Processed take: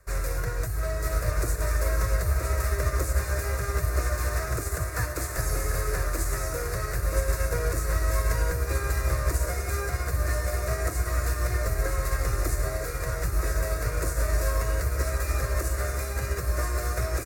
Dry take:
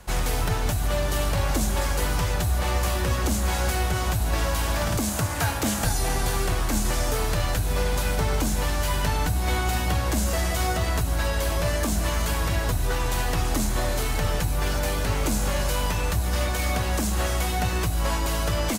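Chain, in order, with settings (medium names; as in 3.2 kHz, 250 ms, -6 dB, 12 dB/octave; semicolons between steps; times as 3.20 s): treble shelf 11 kHz -4.5 dB; static phaser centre 780 Hz, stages 6; on a send: feedback delay 1058 ms, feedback 56%, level -5.5 dB; on the sum: speed mistake 44.1 kHz file played as 48 kHz; upward expansion 1.5:1, over -37 dBFS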